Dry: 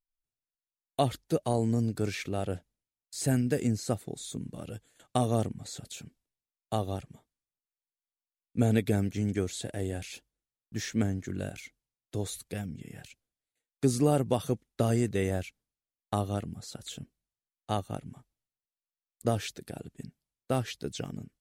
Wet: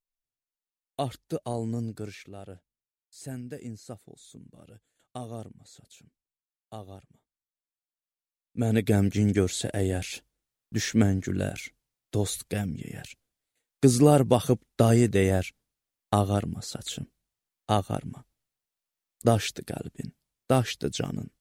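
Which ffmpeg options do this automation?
ffmpeg -i in.wav -af "volume=14dB,afade=type=out:start_time=1.81:duration=0.45:silence=0.421697,afade=type=in:start_time=7.09:duration=1.49:silence=0.398107,afade=type=in:start_time=8.58:duration=0.5:silence=0.334965" out.wav

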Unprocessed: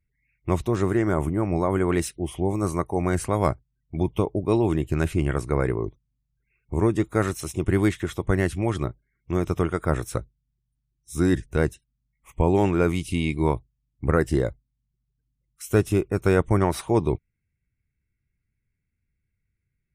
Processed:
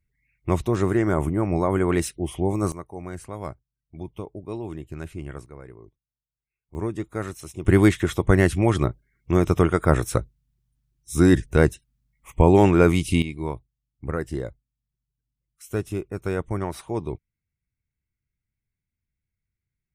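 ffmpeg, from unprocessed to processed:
ffmpeg -i in.wav -af "asetnsamples=nb_out_samples=441:pad=0,asendcmd='2.72 volume volume -11.5dB;5.46 volume volume -19.5dB;6.75 volume volume -7dB;7.65 volume volume 5dB;13.22 volume volume -7dB',volume=1dB" out.wav

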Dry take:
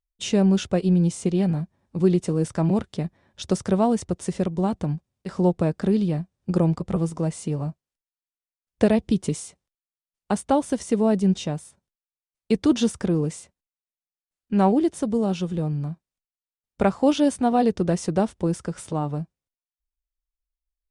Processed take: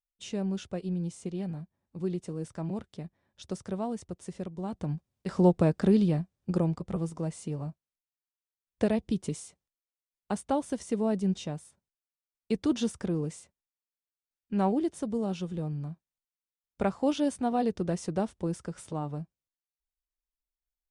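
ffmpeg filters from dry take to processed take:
ffmpeg -i in.wav -af "volume=-1.5dB,afade=type=in:start_time=4.64:duration=0.63:silence=0.266073,afade=type=out:start_time=6:duration=0.71:silence=0.473151" out.wav

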